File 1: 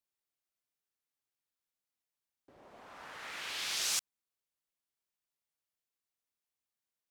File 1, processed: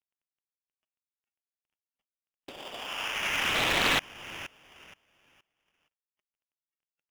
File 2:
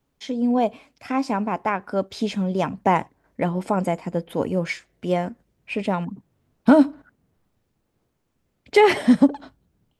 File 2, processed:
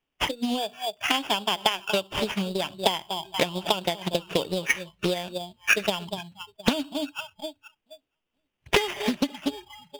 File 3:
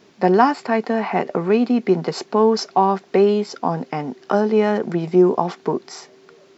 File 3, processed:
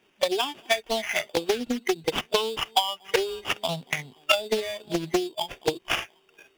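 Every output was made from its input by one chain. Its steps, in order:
companding laws mixed up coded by mu; peaking EQ 97 Hz -8.5 dB 2.7 oct; echo whose repeats swap between lows and highs 236 ms, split 890 Hz, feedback 50%, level -12.5 dB; spectral noise reduction 22 dB; compression 10:1, threshold -30 dBFS; transient shaper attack +8 dB, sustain -2 dB; sample-rate reducer 4.1 kHz, jitter 0%; peaking EQ 2.9 kHz +14 dB 0.65 oct; loudspeaker Doppler distortion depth 0.57 ms; normalise loudness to -27 LUFS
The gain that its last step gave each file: +5.0 dB, +3.0 dB, +2.5 dB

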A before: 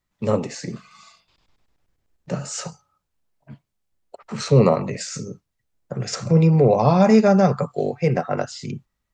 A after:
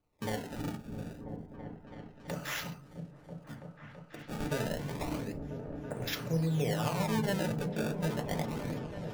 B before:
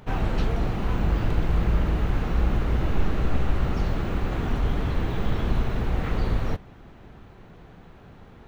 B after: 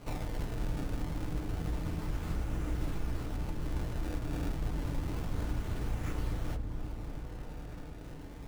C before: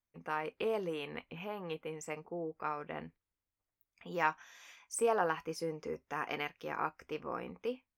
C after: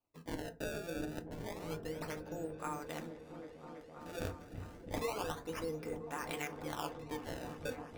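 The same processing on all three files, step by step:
treble shelf 2.7 kHz +7.5 dB; compression 2.5:1, threshold -36 dBFS; decimation with a swept rate 24×, swing 160% 0.29 Hz; delay with an opening low-pass 330 ms, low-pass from 200 Hz, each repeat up 1 oct, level -3 dB; FDN reverb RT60 0.31 s, low-frequency decay 1.35×, high-frequency decay 0.5×, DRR 6 dB; trim -3.5 dB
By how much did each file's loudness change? -16.0 LU, -11.0 LU, -4.5 LU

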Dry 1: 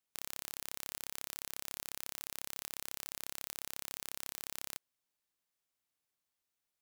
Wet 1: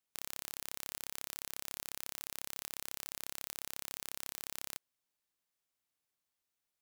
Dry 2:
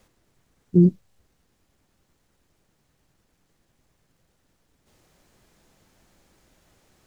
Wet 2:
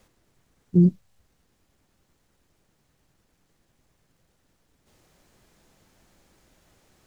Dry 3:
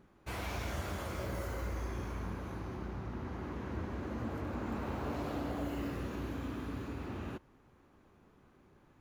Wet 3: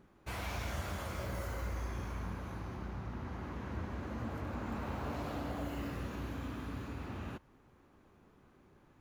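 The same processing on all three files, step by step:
dynamic bell 360 Hz, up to -5 dB, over -53 dBFS, Q 1.5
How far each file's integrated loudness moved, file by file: 0.0 LU, -1.5 LU, -1.0 LU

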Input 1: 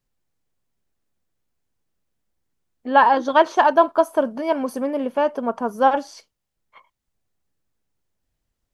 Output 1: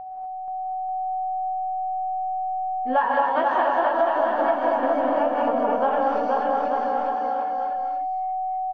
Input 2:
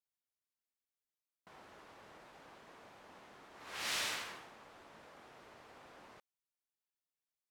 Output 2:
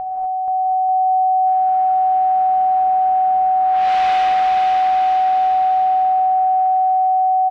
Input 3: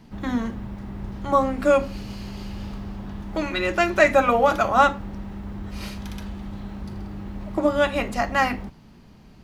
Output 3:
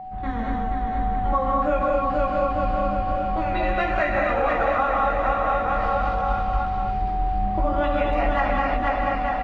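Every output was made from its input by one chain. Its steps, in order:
wow and flutter 25 cents; chorus voices 4, 0.45 Hz, delay 20 ms, depth 3.5 ms; whistle 750 Hz -34 dBFS; peaking EQ 300 Hz -3.5 dB 1.5 oct; hum notches 60/120/180/240 Hz; on a send: bouncing-ball echo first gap 480 ms, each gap 0.85×, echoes 5; on the sum: gated-style reverb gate 270 ms rising, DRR -1 dB; compression 5:1, threshold -20 dBFS; low-pass 2.4 kHz 12 dB/octave; bass shelf 84 Hz +8 dB; peak normalisation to -9 dBFS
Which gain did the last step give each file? +2.0 dB, +13.5 dB, +1.5 dB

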